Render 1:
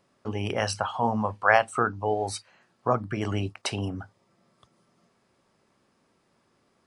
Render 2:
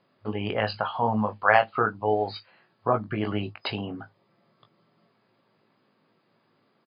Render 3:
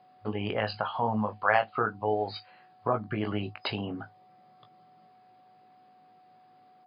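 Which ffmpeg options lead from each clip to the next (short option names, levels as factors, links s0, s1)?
-filter_complex "[0:a]afftfilt=real='re*between(b*sr/4096,100,5000)':imag='im*between(b*sr/4096,100,5000)':win_size=4096:overlap=0.75,asplit=2[s0][s1];[s1]adelay=19,volume=0.447[s2];[s0][s2]amix=inputs=2:normalize=0"
-filter_complex "[0:a]asplit=2[s0][s1];[s1]acompressor=threshold=0.0282:ratio=6,volume=1.19[s2];[s0][s2]amix=inputs=2:normalize=0,aeval=exprs='val(0)+0.00316*sin(2*PI*740*n/s)':c=same,volume=0.473"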